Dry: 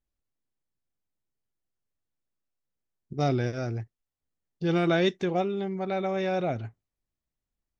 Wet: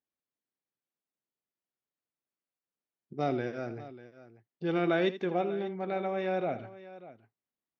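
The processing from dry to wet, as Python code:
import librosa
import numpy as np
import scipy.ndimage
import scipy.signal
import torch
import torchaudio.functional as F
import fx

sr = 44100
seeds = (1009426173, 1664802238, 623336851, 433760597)

y = fx.bandpass_edges(x, sr, low_hz=210.0, high_hz=3100.0)
y = fx.echo_multitap(y, sr, ms=(80, 592), db=(-13.5, -16.5))
y = y * librosa.db_to_amplitude(-3.0)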